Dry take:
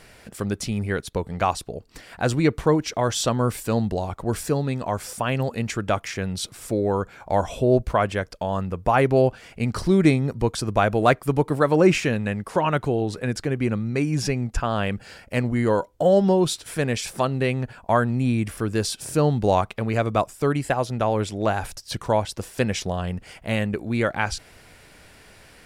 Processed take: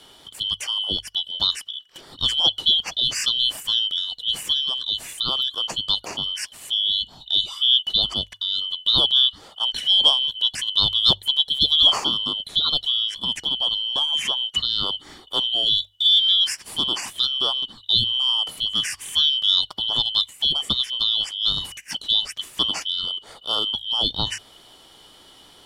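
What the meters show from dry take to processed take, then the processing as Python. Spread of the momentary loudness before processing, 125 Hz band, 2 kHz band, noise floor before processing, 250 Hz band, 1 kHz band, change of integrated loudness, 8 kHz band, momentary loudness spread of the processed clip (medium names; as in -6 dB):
9 LU, -17.0 dB, -9.0 dB, -51 dBFS, -17.5 dB, -10.5 dB, +3.5 dB, 0.0 dB, 9 LU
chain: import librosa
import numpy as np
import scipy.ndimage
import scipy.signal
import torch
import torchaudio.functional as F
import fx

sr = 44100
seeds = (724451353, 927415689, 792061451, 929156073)

y = fx.band_shuffle(x, sr, order='2413')
y = fx.hum_notches(y, sr, base_hz=50, count=2)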